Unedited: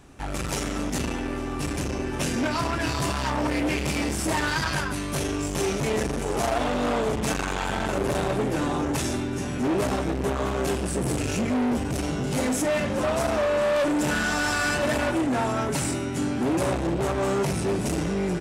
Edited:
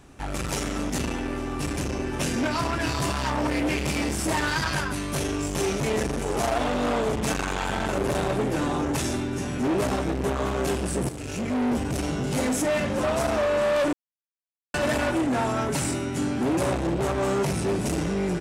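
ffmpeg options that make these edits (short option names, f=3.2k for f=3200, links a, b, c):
-filter_complex "[0:a]asplit=4[a][b][c][d];[a]atrim=end=11.09,asetpts=PTS-STARTPTS,afade=t=out:st=11.086:d=0.004:c=hsin:silence=0.237137[e];[b]atrim=start=11.09:end=13.93,asetpts=PTS-STARTPTS,afade=t=in:d=0.59:silence=0.237137,afade=t=out:st=2.836:d=0.004:c=hsin[f];[c]atrim=start=13.93:end=14.74,asetpts=PTS-STARTPTS,volume=0[g];[d]atrim=start=14.74,asetpts=PTS-STARTPTS,afade=t=in:d=0.004:c=hsin[h];[e][f][g][h]concat=n=4:v=0:a=1"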